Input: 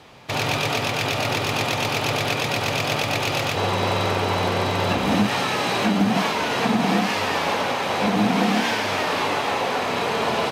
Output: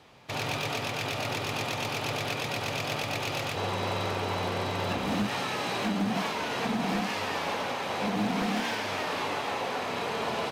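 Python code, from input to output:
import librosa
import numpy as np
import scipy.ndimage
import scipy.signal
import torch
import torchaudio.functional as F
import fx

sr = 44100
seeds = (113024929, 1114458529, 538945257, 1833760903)

y = fx.cheby_harmonics(x, sr, harmonics=(8,), levels_db=(-39,), full_scale_db=-6.0)
y = 10.0 ** (-13.0 / 20.0) * (np.abs((y / 10.0 ** (-13.0 / 20.0) + 3.0) % 4.0 - 2.0) - 1.0)
y = F.gain(torch.from_numpy(y), -8.5).numpy()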